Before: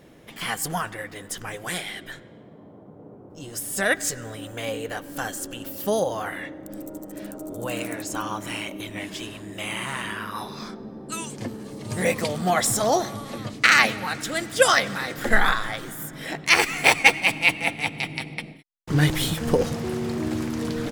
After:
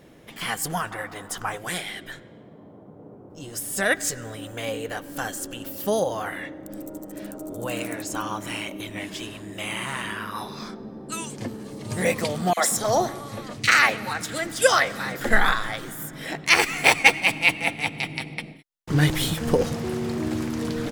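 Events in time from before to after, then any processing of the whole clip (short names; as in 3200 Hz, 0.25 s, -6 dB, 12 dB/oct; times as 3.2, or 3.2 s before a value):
0.91–1.58 band shelf 1000 Hz +9.5 dB 1.3 oct
12.53–15.21 three bands offset in time highs, mids, lows 40/180 ms, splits 230/3100 Hz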